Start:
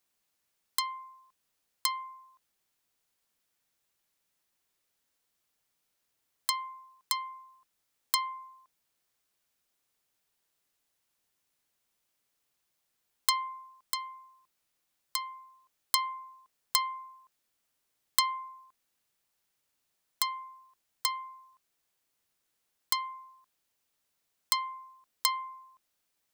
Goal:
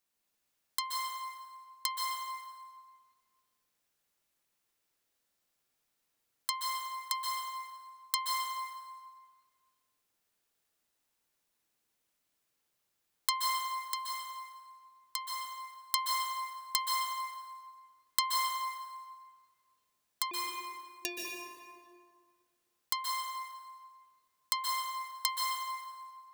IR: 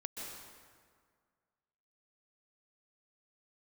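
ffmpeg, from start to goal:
-filter_complex "[0:a]asettb=1/sr,asplit=3[link_01][link_02][link_03];[link_01]atrim=end=20.314[link_04];[link_02]atrim=start=20.31:end=21.25,asetpts=PTS-STARTPTS,afade=type=in:duration=0.004:curve=qsin,afade=type=out:start_time=0.936:duration=0.004:curve=qsin,aeval=exprs='val(0)*sin(2*PI*1400*n/s)':channel_layout=same[link_05];[link_03]atrim=start=21.246[link_06];[link_04][link_05]acrossfade=duration=0.004:curve1=hsin:curve2=qsin[link_07];[link_07][link_06]acrossfade=duration=0.004:curve1=qsin:curve2=hsin[link_08];[1:a]atrim=start_sample=2205[link_09];[link_08][link_09]afir=irnorm=-1:irlink=0"

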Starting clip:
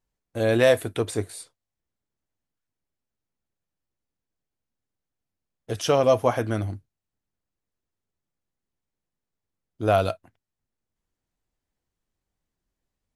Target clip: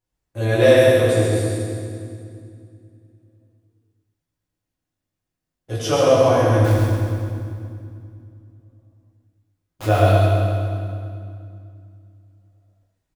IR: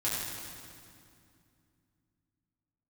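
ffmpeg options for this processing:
-filter_complex "[0:a]asettb=1/sr,asplit=3[link_01][link_02][link_03];[link_01]atrim=end=6.644[link_04];[link_02]atrim=start=6.64:end=9.86,asetpts=PTS-STARTPTS,afade=type=in:duration=0.004:curve=qsin,afade=type=out:start_time=3.216:duration=0.004:curve=qsin,aeval=exprs='(mod(23.7*val(0)+1,2)-1)/23.7':channel_layout=same[link_05];[link_03]atrim=start=9.856[link_06];[link_04][link_05]acrossfade=duration=0.004:curve1=hsin:curve2=qsin[link_07];[link_07][link_06]acrossfade=duration=0.004:curve1=qsin:curve2=hsin,aecho=1:1:132:0.596[link_08];[1:a]atrim=start_sample=2205[link_09];[link_08][link_09]afir=irnorm=-1:irlink=0,volume=-3dB"

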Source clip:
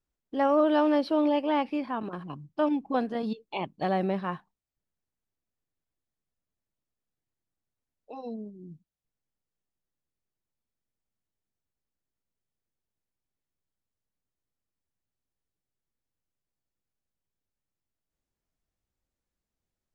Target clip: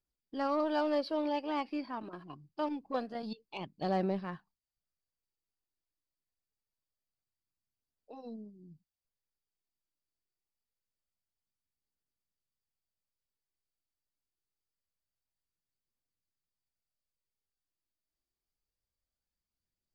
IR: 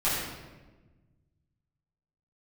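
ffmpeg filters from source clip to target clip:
-af "aphaser=in_gain=1:out_gain=1:delay=3.3:decay=0.37:speed=0.25:type=triangular,aeval=exprs='0.2*(cos(1*acos(clip(val(0)/0.2,-1,1)))-cos(1*PI/2))+0.00501*(cos(7*acos(clip(val(0)/0.2,-1,1)))-cos(7*PI/2))+0.00158*(cos(8*acos(clip(val(0)/0.2,-1,1)))-cos(8*PI/2))':channel_layout=same,equalizer=frequency=4700:width_type=o:width=0.22:gain=13,volume=-7.5dB"

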